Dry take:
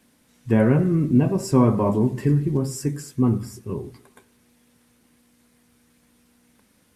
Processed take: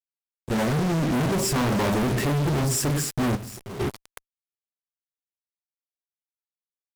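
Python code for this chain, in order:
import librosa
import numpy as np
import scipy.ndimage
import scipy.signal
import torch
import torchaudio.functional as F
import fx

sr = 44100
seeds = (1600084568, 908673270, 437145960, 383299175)

y = fx.fade_in_head(x, sr, length_s=1.72)
y = fx.fuzz(y, sr, gain_db=46.0, gate_db=-40.0)
y = fx.tube_stage(y, sr, drive_db=26.0, bias=0.65, at=(3.35, 3.79), fade=0.02)
y = F.gain(torch.from_numpy(y), -8.5).numpy()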